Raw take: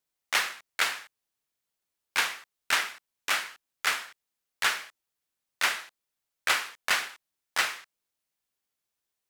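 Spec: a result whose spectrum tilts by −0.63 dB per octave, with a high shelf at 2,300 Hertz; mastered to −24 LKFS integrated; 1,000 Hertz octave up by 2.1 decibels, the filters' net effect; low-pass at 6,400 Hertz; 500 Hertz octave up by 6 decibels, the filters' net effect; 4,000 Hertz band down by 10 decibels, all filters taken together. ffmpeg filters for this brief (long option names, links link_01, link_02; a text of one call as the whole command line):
ffmpeg -i in.wav -af "lowpass=6400,equalizer=frequency=500:width_type=o:gain=7,equalizer=frequency=1000:width_type=o:gain=3.5,highshelf=frequency=2300:gain=-7,equalizer=frequency=4000:width_type=o:gain=-7,volume=8dB" out.wav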